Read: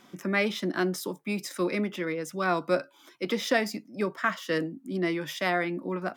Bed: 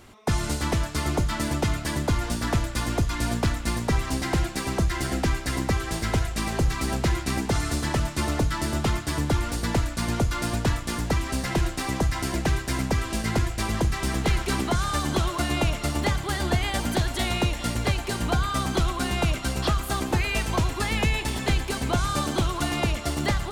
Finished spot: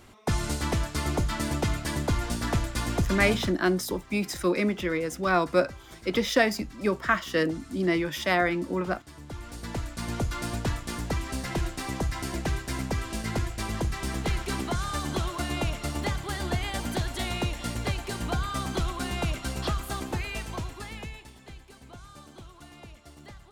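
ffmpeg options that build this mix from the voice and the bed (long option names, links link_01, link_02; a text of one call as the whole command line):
ffmpeg -i stem1.wav -i stem2.wav -filter_complex "[0:a]adelay=2850,volume=3dB[link_01];[1:a]volume=12.5dB,afade=type=out:start_time=3.29:duration=0.27:silence=0.133352,afade=type=in:start_time=9.2:duration=1.05:silence=0.177828,afade=type=out:start_time=19.74:duration=1.6:silence=0.133352[link_02];[link_01][link_02]amix=inputs=2:normalize=0" out.wav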